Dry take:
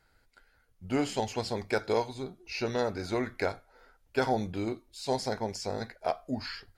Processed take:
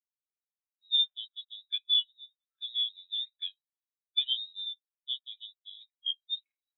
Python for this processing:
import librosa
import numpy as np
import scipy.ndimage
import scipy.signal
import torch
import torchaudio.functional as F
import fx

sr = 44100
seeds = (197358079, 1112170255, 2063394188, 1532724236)

y = fx.dead_time(x, sr, dead_ms=0.15)
y = fx.freq_invert(y, sr, carrier_hz=3900)
y = fx.spectral_expand(y, sr, expansion=2.5)
y = y * 10.0 ** (-2.5 / 20.0)